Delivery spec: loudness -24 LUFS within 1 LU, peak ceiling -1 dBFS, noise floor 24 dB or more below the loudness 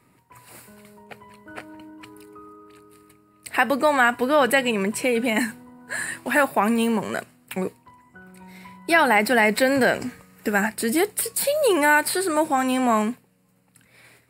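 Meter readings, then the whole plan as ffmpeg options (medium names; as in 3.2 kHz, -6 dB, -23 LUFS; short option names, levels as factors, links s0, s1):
loudness -21.5 LUFS; peak level -4.5 dBFS; loudness target -24.0 LUFS
-> -af "volume=0.75"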